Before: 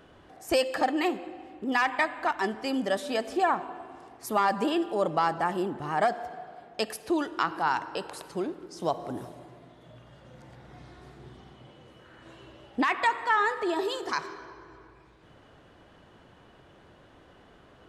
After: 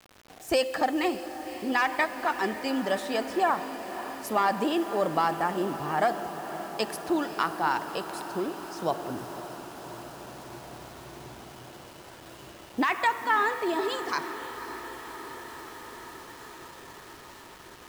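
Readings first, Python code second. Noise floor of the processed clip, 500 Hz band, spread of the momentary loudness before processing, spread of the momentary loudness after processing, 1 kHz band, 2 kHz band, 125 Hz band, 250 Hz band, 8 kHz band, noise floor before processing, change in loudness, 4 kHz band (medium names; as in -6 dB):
-48 dBFS, +0.5 dB, 16 LU, 20 LU, +0.5 dB, +0.5 dB, +0.5 dB, +0.5 dB, +2.5 dB, -56 dBFS, -0.5 dB, +1.0 dB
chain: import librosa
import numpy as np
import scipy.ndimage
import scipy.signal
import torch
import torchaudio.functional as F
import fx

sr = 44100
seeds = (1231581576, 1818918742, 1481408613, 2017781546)

y = fx.echo_diffused(x, sr, ms=547, feedback_pct=77, wet_db=-13.0)
y = fx.quant_dither(y, sr, seeds[0], bits=8, dither='none')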